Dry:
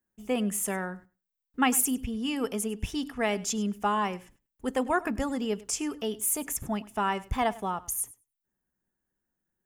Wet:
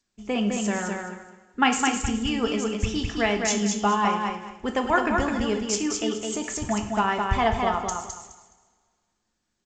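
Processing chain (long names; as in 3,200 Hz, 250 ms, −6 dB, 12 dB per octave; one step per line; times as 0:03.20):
harmonic and percussive parts rebalanced harmonic −4 dB
on a send: repeating echo 210 ms, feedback 24%, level −4 dB
on the sum: coupled-rooms reverb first 0.52 s, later 1.9 s, from −18 dB, DRR 5.5 dB
level +5.5 dB
G.722 64 kbit/s 16,000 Hz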